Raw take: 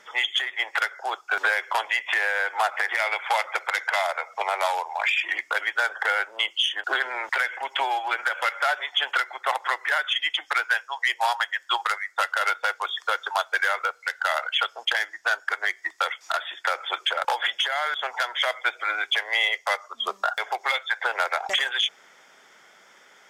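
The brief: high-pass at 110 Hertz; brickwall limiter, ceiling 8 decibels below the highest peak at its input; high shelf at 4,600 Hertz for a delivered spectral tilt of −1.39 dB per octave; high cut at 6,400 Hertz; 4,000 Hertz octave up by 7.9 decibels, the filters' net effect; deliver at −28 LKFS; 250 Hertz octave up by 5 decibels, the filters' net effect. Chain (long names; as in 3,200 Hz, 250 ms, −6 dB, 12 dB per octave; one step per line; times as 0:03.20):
high-pass filter 110 Hz
low-pass filter 6,400 Hz
parametric band 250 Hz +9 dB
parametric band 4,000 Hz +7.5 dB
high-shelf EQ 4,600 Hz +7.5 dB
level −4.5 dB
brickwall limiter −16.5 dBFS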